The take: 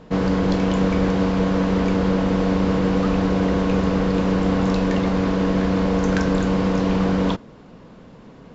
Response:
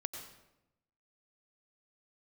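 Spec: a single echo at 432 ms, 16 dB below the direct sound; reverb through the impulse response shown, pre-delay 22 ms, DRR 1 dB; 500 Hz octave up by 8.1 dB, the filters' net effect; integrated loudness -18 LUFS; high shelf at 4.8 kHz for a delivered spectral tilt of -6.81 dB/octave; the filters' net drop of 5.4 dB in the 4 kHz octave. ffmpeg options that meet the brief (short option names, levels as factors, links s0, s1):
-filter_complex "[0:a]equalizer=f=500:t=o:g=9,equalizer=f=4000:t=o:g=-4,highshelf=f=4800:g=-7.5,aecho=1:1:432:0.158,asplit=2[s0][s1];[1:a]atrim=start_sample=2205,adelay=22[s2];[s1][s2]afir=irnorm=-1:irlink=0,volume=0.944[s3];[s0][s3]amix=inputs=2:normalize=0,volume=0.631"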